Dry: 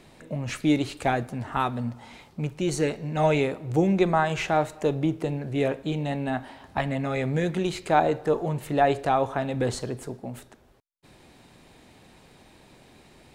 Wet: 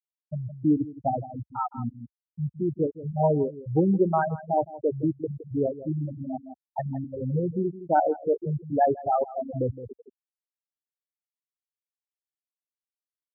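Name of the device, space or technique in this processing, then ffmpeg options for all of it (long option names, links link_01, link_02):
ducked delay: -filter_complex "[0:a]asettb=1/sr,asplit=3[link_01][link_02][link_03];[link_01]atrim=end=4.764[link_04];[link_02]atrim=start=4.76:end=5.45,asetpts=PTS-STARTPTS,afade=type=in:duration=0.004:curve=qsin,afade=type=out:start_time=0.686:duration=0.004:curve=qsin,highpass=frequency=100:poles=1[link_05];[link_03]atrim=start=5.446[link_06];[link_04][link_05]acrossfade=duration=0.004:curve1=hsin:curve2=qsin[link_07];[link_07][link_06]acrossfade=duration=0.004:curve1=qsin:curve2=hsin,afftfilt=real='re*gte(hypot(re,im),0.282)':imag='im*gte(hypot(re,im),0.282)':win_size=1024:overlap=0.75,asplit=3[link_08][link_09][link_10];[link_09]adelay=165,volume=-9dB[link_11];[link_10]apad=whole_len=595699[link_12];[link_11][link_12]sidechaincompress=threshold=-33dB:ratio=6:attack=38:release=414[link_13];[link_08][link_13]amix=inputs=2:normalize=0,equalizer=frequency=63:width=1.1:gain=6"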